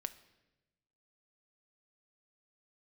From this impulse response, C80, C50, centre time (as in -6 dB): 18.0 dB, 15.5 dB, 5 ms